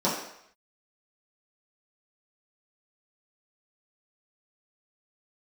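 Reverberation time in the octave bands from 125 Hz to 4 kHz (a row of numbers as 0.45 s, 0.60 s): 0.55 s, 0.55 s, 0.70 s, 0.75 s, 0.75 s, 0.70 s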